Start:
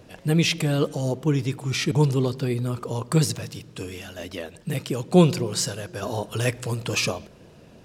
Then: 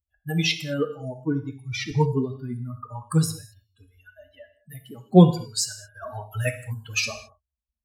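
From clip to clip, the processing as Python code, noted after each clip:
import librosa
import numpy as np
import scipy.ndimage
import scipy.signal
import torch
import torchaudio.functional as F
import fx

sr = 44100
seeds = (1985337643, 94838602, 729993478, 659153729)

y = fx.bin_expand(x, sr, power=3.0)
y = fx.rev_gated(y, sr, seeds[0], gate_ms=240, shape='falling', drr_db=6.5)
y = y * librosa.db_to_amplitude(4.0)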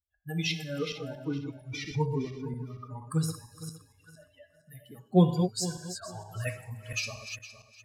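y = fx.reverse_delay_fb(x, sr, ms=231, feedback_pct=43, wet_db=-7.5)
y = y * librosa.db_to_amplitude(-8.0)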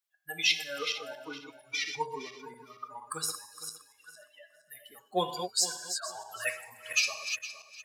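y = scipy.signal.sosfilt(scipy.signal.butter(2, 880.0, 'highpass', fs=sr, output='sos'), x)
y = y * librosa.db_to_amplitude(6.5)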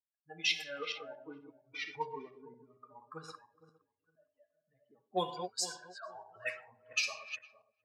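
y = fx.env_lowpass(x, sr, base_hz=310.0, full_db=-25.0)
y = fx.high_shelf(y, sr, hz=8900.0, db=-12.0)
y = y * librosa.db_to_amplitude(-4.0)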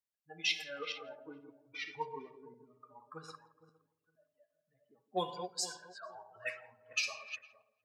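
y = fx.echo_filtered(x, sr, ms=168, feedback_pct=27, hz=820.0, wet_db=-14.5)
y = y * librosa.db_to_amplitude(-1.5)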